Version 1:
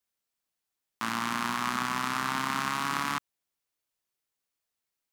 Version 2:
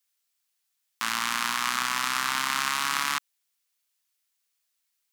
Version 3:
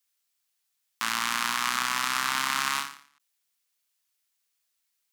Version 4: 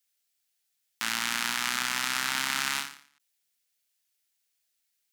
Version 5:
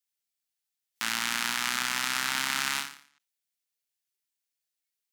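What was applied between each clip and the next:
tilt shelf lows -9 dB
endings held to a fixed fall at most 120 dB/s
peaking EQ 1.1 kHz -11 dB 0.37 oct
spectral noise reduction 9 dB

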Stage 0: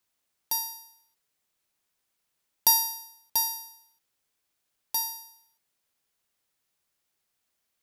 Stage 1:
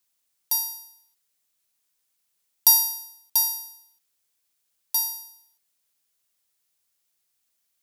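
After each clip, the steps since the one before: treble shelf 3.3 kHz +10.5 dB; trim -4.5 dB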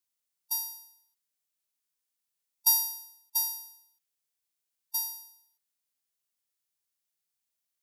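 harmonic-percussive split percussive -9 dB; trim -7 dB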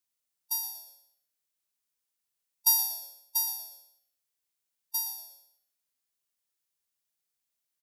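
frequency-shifting echo 118 ms, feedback 32%, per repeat -120 Hz, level -12 dB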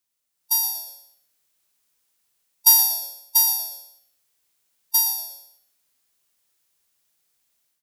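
level rider gain up to 9 dB; in parallel at -3.5 dB: saturation -19 dBFS, distortion -8 dB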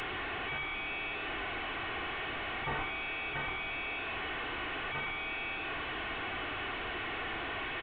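one-bit delta coder 16 kbps, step -23.5 dBFS; comb 2.7 ms, depth 50%; endings held to a fixed fall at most 110 dB/s; trim -8 dB

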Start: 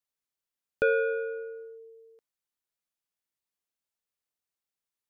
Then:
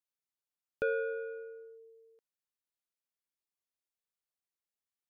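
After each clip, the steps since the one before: dynamic bell 2.6 kHz, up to -5 dB, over -44 dBFS, Q 1.5; trim -7 dB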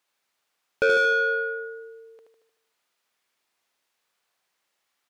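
on a send: feedback delay 76 ms, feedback 54%, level -5 dB; on the sum: overdrive pedal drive 20 dB, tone 2.6 kHz, clips at -22 dBFS; trim +8.5 dB

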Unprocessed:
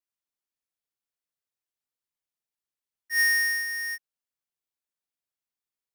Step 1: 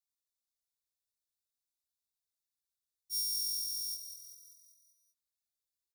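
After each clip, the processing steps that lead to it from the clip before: FFT band-reject 100–3400 Hz; compression, threshold -31 dBFS, peak gain reduction 6 dB; frequency-shifting echo 194 ms, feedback 54%, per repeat +43 Hz, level -9.5 dB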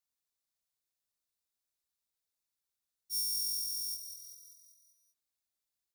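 dynamic bell 4.1 kHz, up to -6 dB, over -54 dBFS, Q 2.2; trim +1.5 dB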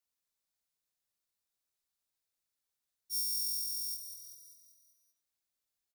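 doubling 23 ms -12 dB; reverberation RT60 0.65 s, pre-delay 40 ms, DRR 13.5 dB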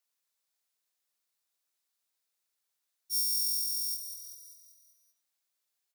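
high-pass 530 Hz 6 dB/octave; trim +4.5 dB

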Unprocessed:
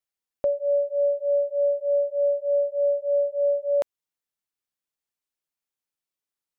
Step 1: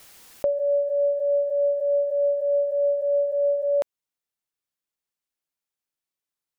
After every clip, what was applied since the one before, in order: swell ahead of each attack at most 31 dB/s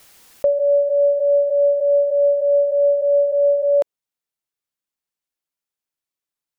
dynamic bell 480 Hz, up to +7 dB, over -35 dBFS, Q 0.93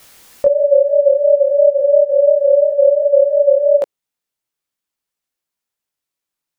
chorus 2.9 Hz, delay 16.5 ms, depth 7.6 ms; trim +8 dB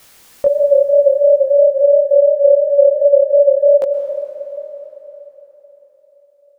plate-style reverb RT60 4.3 s, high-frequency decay 0.85×, pre-delay 110 ms, DRR 6.5 dB; trim -1 dB

